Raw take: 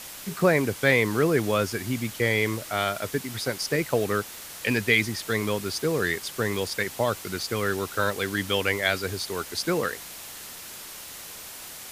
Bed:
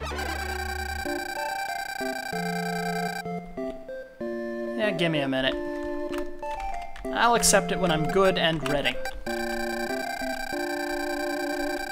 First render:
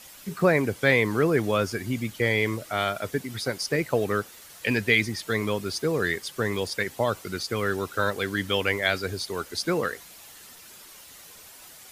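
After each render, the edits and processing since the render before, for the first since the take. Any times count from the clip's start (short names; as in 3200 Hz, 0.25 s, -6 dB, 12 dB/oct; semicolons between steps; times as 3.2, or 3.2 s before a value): denoiser 9 dB, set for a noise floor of -41 dBFS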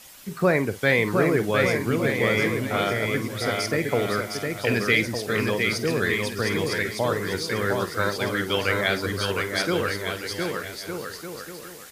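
doubler 50 ms -13.5 dB; bouncing-ball echo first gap 0.71 s, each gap 0.7×, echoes 5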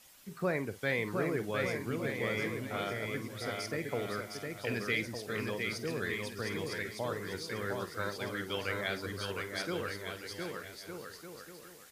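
gain -12 dB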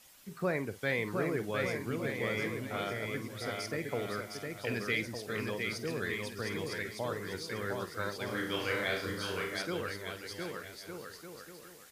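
8.25–9.57 flutter echo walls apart 5.7 m, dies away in 0.5 s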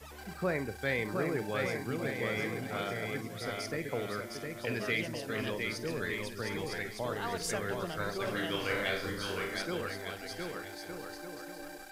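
add bed -17.5 dB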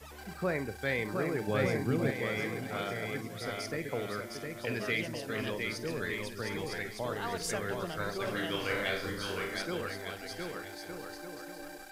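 1.47–2.11 low shelf 470 Hz +8 dB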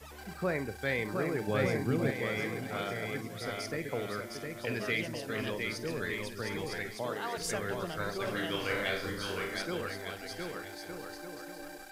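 6.95–7.36 HPF 86 Hz -> 350 Hz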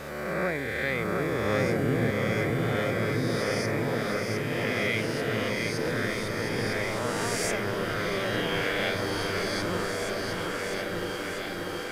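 spectral swells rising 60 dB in 1.93 s; on a send: repeats that get brighter 0.646 s, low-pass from 200 Hz, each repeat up 2 oct, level 0 dB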